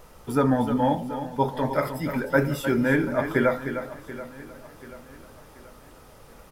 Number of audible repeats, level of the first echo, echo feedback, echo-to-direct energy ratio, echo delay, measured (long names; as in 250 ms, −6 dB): 6, −9.5 dB, repeats not evenly spaced, −8.5 dB, 307 ms